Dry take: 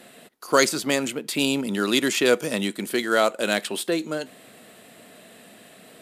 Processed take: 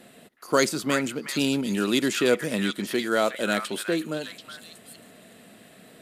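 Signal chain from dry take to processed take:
low-shelf EQ 290 Hz +8 dB
echo through a band-pass that steps 368 ms, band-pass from 1,600 Hz, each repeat 1.4 octaves, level −3 dB
level −4.5 dB

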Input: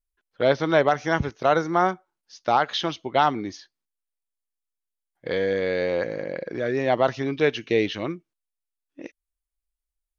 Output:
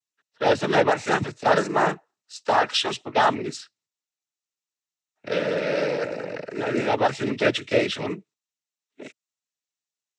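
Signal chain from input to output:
high-shelf EQ 3,300 Hz +8.5 dB
cochlear-implant simulation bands 12

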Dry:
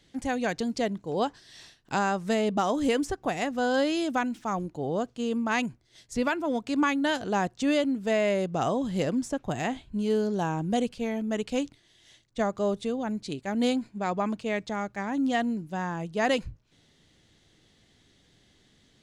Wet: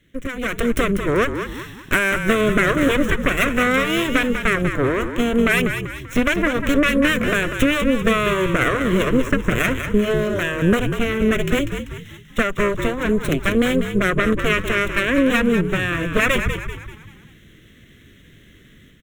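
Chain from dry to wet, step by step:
running median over 5 samples
downward compressor, threshold −30 dBFS, peak gain reduction 9.5 dB
harmonic generator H 6 −7 dB, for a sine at −19.5 dBFS
phaser with its sweep stopped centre 2,000 Hz, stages 4
automatic gain control gain up to 11 dB
on a send: echo with shifted repeats 194 ms, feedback 43%, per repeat −54 Hz, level −8 dB
on the sum: level +5 dB

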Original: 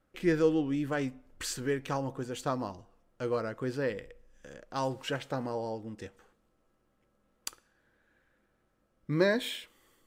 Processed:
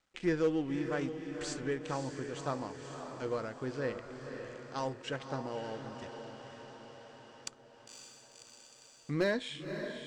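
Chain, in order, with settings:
mu-law and A-law mismatch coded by A
Butterworth low-pass 8,300 Hz 36 dB per octave
gain into a clipping stage and back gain 19.5 dB
feedback delay with all-pass diffusion 544 ms, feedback 55%, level −8 dB
one half of a high-frequency compander encoder only
level −3 dB

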